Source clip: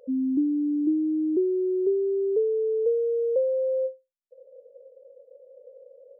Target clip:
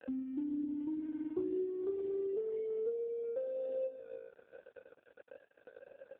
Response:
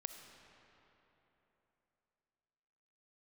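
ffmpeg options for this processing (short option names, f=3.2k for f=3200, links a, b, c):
-filter_complex "[0:a]asplit=2[a][b];[1:a]atrim=start_sample=2205[c];[b][c]afir=irnorm=-1:irlink=0,volume=5dB[d];[a][d]amix=inputs=2:normalize=0,asoftclip=type=tanh:threshold=-8.5dB,flanger=delay=1.8:depth=2.6:regen=50:speed=0.5:shape=sinusoidal,aeval=exprs='sgn(val(0))*max(abs(val(0))-0.00562,0)':c=same,acompressor=mode=upward:threshold=-36dB:ratio=2.5,adynamicequalizer=threshold=0.00891:dfrequency=140:dqfactor=1.2:tfrequency=140:tqfactor=1.2:attack=5:release=100:ratio=0.375:range=3:mode=cutabove:tftype=bell,acompressor=threshold=-29dB:ratio=2.5,volume=-6dB" -ar 8000 -c:a libopencore_amrnb -b:a 5150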